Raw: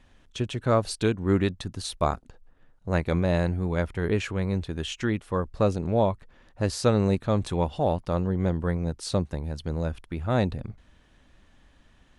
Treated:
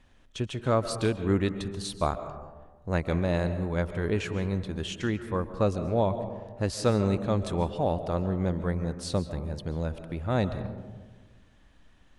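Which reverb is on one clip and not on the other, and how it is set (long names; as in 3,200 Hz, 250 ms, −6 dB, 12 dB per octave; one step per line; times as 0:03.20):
comb and all-pass reverb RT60 1.4 s, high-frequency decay 0.3×, pre-delay 100 ms, DRR 10.5 dB
level −2.5 dB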